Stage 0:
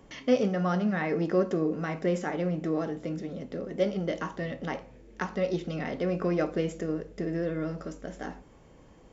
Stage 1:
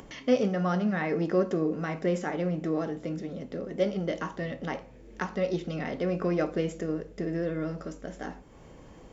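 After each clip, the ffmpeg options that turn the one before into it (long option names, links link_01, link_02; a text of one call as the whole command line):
ffmpeg -i in.wav -af "acompressor=mode=upward:threshold=-42dB:ratio=2.5" out.wav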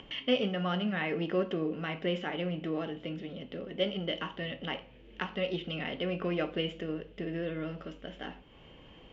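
ffmpeg -i in.wav -af "lowpass=frequency=3000:width_type=q:width=7.6,volume=-5dB" out.wav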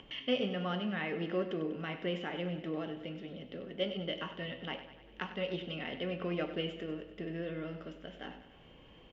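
ffmpeg -i in.wav -af "aecho=1:1:97|194|291|388|485|582|679:0.251|0.148|0.0874|0.0516|0.0304|0.018|0.0106,volume=-4dB" out.wav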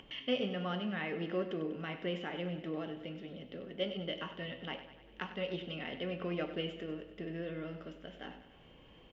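ffmpeg -i in.wav -af "acompressor=mode=upward:threshold=-56dB:ratio=2.5,volume=-1.5dB" out.wav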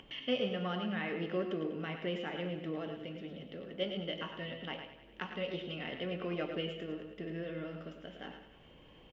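ffmpeg -i in.wav -filter_complex "[0:a]asplit=2[link_01][link_02];[link_02]adelay=110.8,volume=-8dB,highshelf=frequency=4000:gain=-2.49[link_03];[link_01][link_03]amix=inputs=2:normalize=0" out.wav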